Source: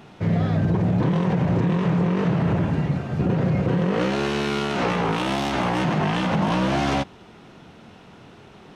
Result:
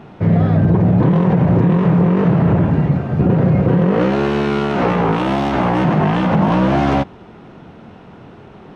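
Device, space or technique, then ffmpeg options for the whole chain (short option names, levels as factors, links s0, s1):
through cloth: -af "highshelf=f=2900:g=-16.5,volume=2.51"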